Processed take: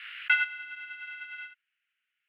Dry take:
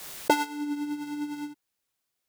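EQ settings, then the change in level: elliptic band-pass 1400–2900 Hz, stop band 50 dB; tilt +2.5 dB/oct; +7.0 dB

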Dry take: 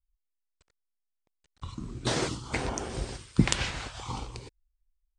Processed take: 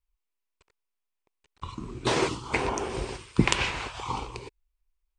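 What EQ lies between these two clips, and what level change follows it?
fifteen-band EQ 400 Hz +8 dB, 1000 Hz +9 dB, 2500 Hz +8 dB; -1.0 dB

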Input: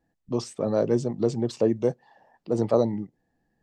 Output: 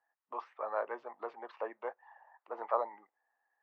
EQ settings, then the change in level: ladder high-pass 820 Hz, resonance 40%; LPF 2100 Hz 24 dB/oct; +6.5 dB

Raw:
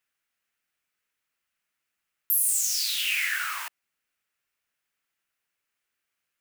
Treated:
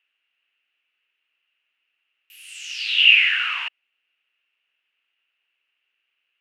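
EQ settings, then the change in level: HPF 280 Hz 24 dB/oct; synth low-pass 2800 Hz, resonance Q 8.3; 0.0 dB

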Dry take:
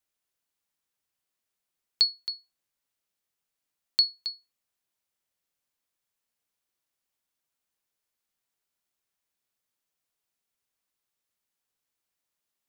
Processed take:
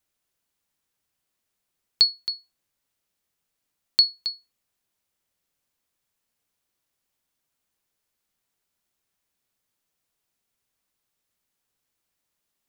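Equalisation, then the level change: low shelf 320 Hz +5 dB; +4.5 dB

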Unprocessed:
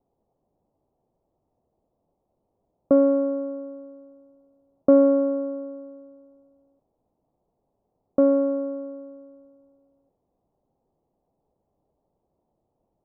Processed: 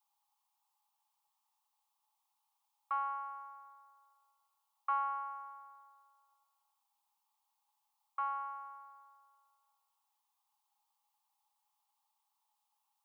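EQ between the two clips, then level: rippled Chebyshev high-pass 810 Hz, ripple 6 dB; tilt +3.5 dB/oct; +4.5 dB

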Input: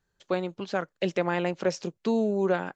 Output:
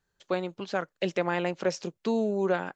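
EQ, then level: low shelf 390 Hz -3 dB; 0.0 dB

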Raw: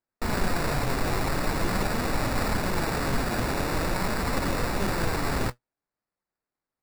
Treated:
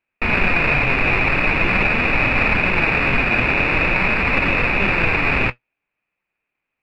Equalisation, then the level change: synth low-pass 2500 Hz, resonance Q 14; +5.5 dB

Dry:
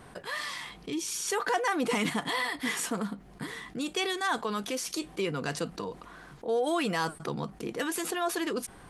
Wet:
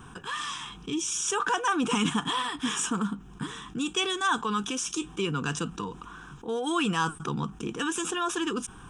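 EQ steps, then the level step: fixed phaser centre 3000 Hz, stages 8; +6.0 dB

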